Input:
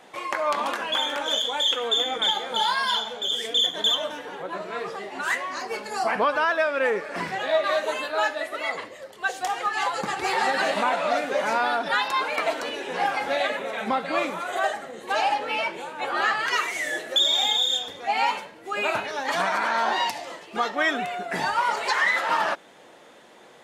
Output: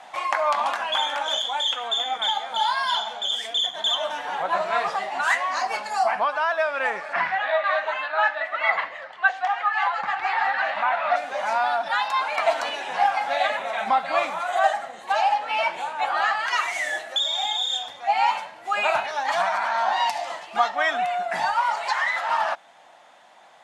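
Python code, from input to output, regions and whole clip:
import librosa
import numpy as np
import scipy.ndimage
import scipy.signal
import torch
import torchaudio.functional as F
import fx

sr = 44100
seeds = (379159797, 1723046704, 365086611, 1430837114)

y = fx.chain(x, sr, fx.lowpass(hz=3800.0, slope=12),
    fx.peak_eq(hz=1700.0, db=10.0, octaves=1.7), at=(7.13, 11.16))
y = scipy.signal.sosfilt(scipy.signal.bessel(2, 9200.0, 'lowpass', norm='mag', fs=sr, output='sos'), y)
y = fx.low_shelf_res(y, sr, hz=560.0, db=-8.0, q=3.0)
y = fx.rider(y, sr, range_db=10, speed_s=0.5)
y = y * 10.0 ** (-2.5 / 20.0)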